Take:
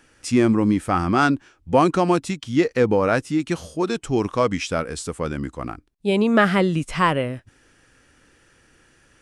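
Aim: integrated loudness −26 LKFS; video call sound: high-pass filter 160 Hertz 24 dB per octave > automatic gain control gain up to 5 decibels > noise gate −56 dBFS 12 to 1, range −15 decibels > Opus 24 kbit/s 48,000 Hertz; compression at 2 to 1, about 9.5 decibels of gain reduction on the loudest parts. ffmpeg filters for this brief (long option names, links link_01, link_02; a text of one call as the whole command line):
ffmpeg -i in.wav -af "acompressor=threshold=-30dB:ratio=2,highpass=frequency=160:width=0.5412,highpass=frequency=160:width=1.3066,dynaudnorm=maxgain=5dB,agate=range=-15dB:threshold=-56dB:ratio=12,volume=4dB" -ar 48000 -c:a libopus -b:a 24k out.opus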